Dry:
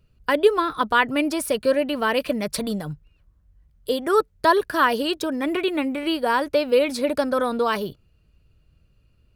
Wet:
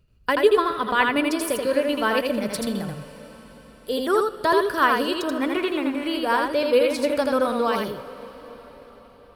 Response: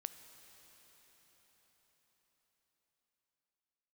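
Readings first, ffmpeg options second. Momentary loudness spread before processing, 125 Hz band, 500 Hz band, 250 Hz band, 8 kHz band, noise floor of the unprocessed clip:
8 LU, −0.5 dB, 0.0 dB, 0.0 dB, −0.5 dB, −62 dBFS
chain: -filter_complex "[0:a]tremolo=f=6.8:d=0.42,asplit=2[link_01][link_02];[1:a]atrim=start_sample=2205,adelay=82[link_03];[link_02][link_03]afir=irnorm=-1:irlink=0,volume=0.5dB[link_04];[link_01][link_04]amix=inputs=2:normalize=0"

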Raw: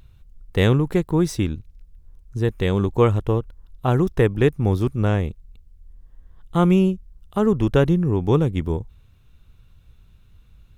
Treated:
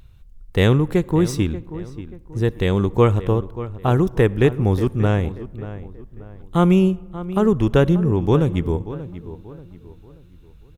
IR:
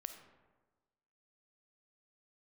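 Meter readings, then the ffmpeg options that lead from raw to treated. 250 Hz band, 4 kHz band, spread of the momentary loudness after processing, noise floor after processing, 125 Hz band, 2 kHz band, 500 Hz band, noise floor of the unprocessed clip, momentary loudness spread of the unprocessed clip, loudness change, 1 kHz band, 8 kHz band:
+2.0 dB, +1.5 dB, 16 LU, −46 dBFS, +1.5 dB, +1.5 dB, +1.5 dB, −53 dBFS, 10 LU, +1.5 dB, +2.0 dB, can't be measured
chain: -filter_complex "[0:a]asplit=2[link_01][link_02];[link_02]adelay=584,lowpass=frequency=2400:poles=1,volume=-14dB,asplit=2[link_03][link_04];[link_04]adelay=584,lowpass=frequency=2400:poles=1,volume=0.38,asplit=2[link_05][link_06];[link_06]adelay=584,lowpass=frequency=2400:poles=1,volume=0.38,asplit=2[link_07][link_08];[link_08]adelay=584,lowpass=frequency=2400:poles=1,volume=0.38[link_09];[link_01][link_03][link_05][link_07][link_09]amix=inputs=5:normalize=0,asplit=2[link_10][link_11];[1:a]atrim=start_sample=2205,asetrate=37485,aresample=44100[link_12];[link_11][link_12]afir=irnorm=-1:irlink=0,volume=-10.5dB[link_13];[link_10][link_13]amix=inputs=2:normalize=0"

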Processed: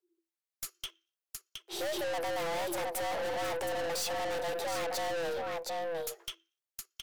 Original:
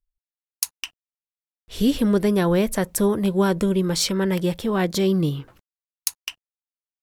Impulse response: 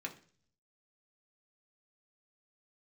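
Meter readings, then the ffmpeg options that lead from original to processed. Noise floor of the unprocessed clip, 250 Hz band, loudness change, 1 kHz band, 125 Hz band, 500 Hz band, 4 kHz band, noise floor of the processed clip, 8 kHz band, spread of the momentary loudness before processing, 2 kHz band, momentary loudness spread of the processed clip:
below −85 dBFS, −25.0 dB, −13.0 dB, −3.5 dB, −26.5 dB, −10.0 dB, −8.5 dB, below −85 dBFS, −10.5 dB, 14 LU, −5.0 dB, 12 LU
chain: -filter_complex "[0:a]aecho=1:1:718:0.316,afreqshift=330,asplit=2[link_01][link_02];[1:a]atrim=start_sample=2205,afade=type=out:start_time=0.35:duration=0.01,atrim=end_sample=15876[link_03];[link_02][link_03]afir=irnorm=-1:irlink=0,volume=-17.5dB[link_04];[link_01][link_04]amix=inputs=2:normalize=0,aeval=exprs='(tanh(44.7*val(0)+0.3)-tanh(0.3))/44.7':channel_layout=same"

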